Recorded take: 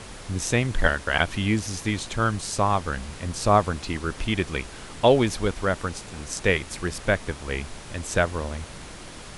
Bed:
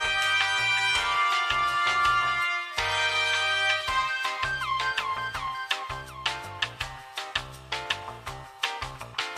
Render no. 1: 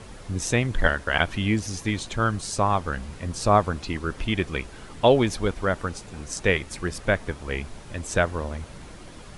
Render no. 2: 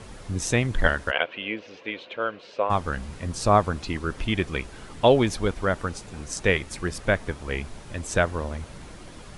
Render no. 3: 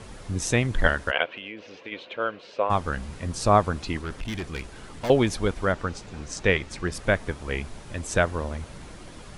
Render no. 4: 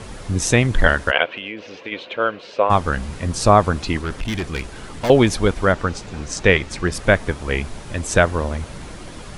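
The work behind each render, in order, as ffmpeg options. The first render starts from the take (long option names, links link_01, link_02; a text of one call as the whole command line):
ffmpeg -i in.wav -af "afftdn=noise_reduction=7:noise_floor=-41" out.wav
ffmpeg -i in.wav -filter_complex "[0:a]asplit=3[link_01][link_02][link_03];[link_01]afade=type=out:start_time=1.1:duration=0.02[link_04];[link_02]highpass=490,equalizer=frequency=510:width_type=q:width=4:gain=9,equalizer=frequency=820:width_type=q:width=4:gain=-7,equalizer=frequency=1200:width_type=q:width=4:gain=-6,equalizer=frequency=1800:width_type=q:width=4:gain=-5,equalizer=frequency=2700:width_type=q:width=4:gain=4,lowpass=frequency=3100:width=0.5412,lowpass=frequency=3100:width=1.3066,afade=type=in:start_time=1.1:duration=0.02,afade=type=out:start_time=2.69:duration=0.02[link_05];[link_03]afade=type=in:start_time=2.69:duration=0.02[link_06];[link_04][link_05][link_06]amix=inputs=3:normalize=0" out.wav
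ffmpeg -i in.wav -filter_complex "[0:a]asplit=3[link_01][link_02][link_03];[link_01]afade=type=out:start_time=1.33:duration=0.02[link_04];[link_02]acompressor=threshold=-33dB:ratio=6:attack=3.2:release=140:knee=1:detection=peak,afade=type=in:start_time=1.33:duration=0.02,afade=type=out:start_time=1.91:duration=0.02[link_05];[link_03]afade=type=in:start_time=1.91:duration=0.02[link_06];[link_04][link_05][link_06]amix=inputs=3:normalize=0,asettb=1/sr,asplit=3[link_07][link_08][link_09];[link_07]atrim=end=4.014[link_10];[link_08]atrim=start=4.01:end=5.1,asetpts=PTS-STARTPTS,afade=type=in:duration=0.004:curve=qsin,afade=type=out:start_time=1.086:duration=0.004:curve=qsin,aeval=exprs='(tanh(22.4*val(0)+0.25)-tanh(0.25))/22.4':channel_layout=same[link_11];[link_09]atrim=start=5.096[link_12];[link_10][link_11]acrossfade=duration=0.004:curve1=hsin:curve2=qsin[link_13];[link_13][link_12]acrossfade=duration=0.004:curve1=qsin:curve2=hsin,asettb=1/sr,asplit=3[link_14][link_15][link_16];[link_14]atrim=end=5.724[link_17];[link_15]atrim=start=5.72:end=6.92,asetpts=PTS-STARTPTS,afade=type=in:duration=0.004:curve=qsin,afade=type=out:start_time=1.196:duration=0.004:curve=qsin,lowpass=6700[link_18];[link_16]atrim=start=6.916[link_19];[link_17][link_18]acrossfade=duration=0.004:curve1=hsin:curve2=qsin[link_20];[link_20][link_19]acrossfade=duration=0.004:curve1=qsin:curve2=hsin" out.wav
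ffmpeg -i in.wav -af "volume=7.5dB,alimiter=limit=-1dB:level=0:latency=1" out.wav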